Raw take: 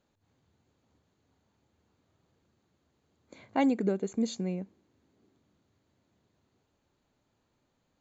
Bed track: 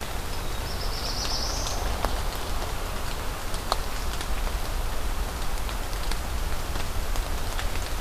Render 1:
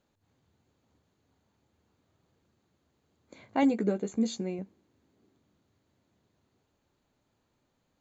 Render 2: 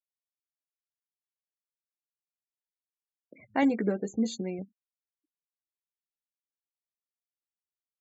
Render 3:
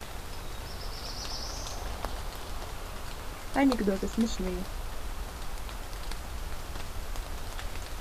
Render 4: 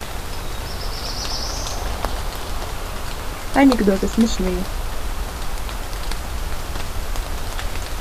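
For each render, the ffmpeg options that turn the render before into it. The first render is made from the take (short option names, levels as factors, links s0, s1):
-filter_complex "[0:a]asettb=1/sr,asplit=3[s0][s1][s2];[s0]atrim=end=3.614[s3];[s1]atrim=start=3.61:end=4.59,asetpts=PTS-STARTPTS,afade=t=in:d=0.004:c=qsin,afade=t=out:st=0.976:d=0.004:c=qsin,asplit=2[s4][s5];[s5]adelay=14,volume=0.501[s6];[s4][s6]amix=inputs=2:normalize=0,atrim=end_sample=43218[s7];[s2]atrim=start=4.586[s8];[s3][s7]acrossfade=d=0.004:c1=hsin:c2=qsin[s9];[s9][s8]acrossfade=d=0.004:c1=qsin:c2=hsin"
-af "afftfilt=real='re*gte(hypot(re,im),0.00501)':imag='im*gte(hypot(re,im),0.00501)':win_size=1024:overlap=0.75,equalizer=f=1800:w=4.4:g=9.5"
-filter_complex "[1:a]volume=0.376[s0];[0:a][s0]amix=inputs=2:normalize=0"
-af "volume=3.76,alimiter=limit=0.794:level=0:latency=1"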